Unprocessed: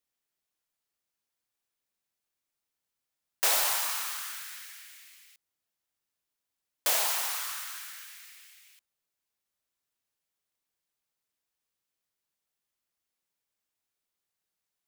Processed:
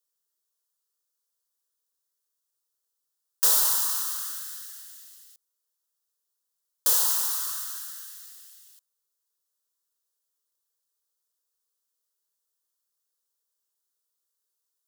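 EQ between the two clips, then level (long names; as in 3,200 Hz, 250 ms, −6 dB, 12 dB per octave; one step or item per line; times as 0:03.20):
four-pole ladder high-pass 340 Hz, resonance 40%
high-shelf EQ 2,000 Hz +11.5 dB
phaser with its sweep stopped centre 460 Hz, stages 8
+3.5 dB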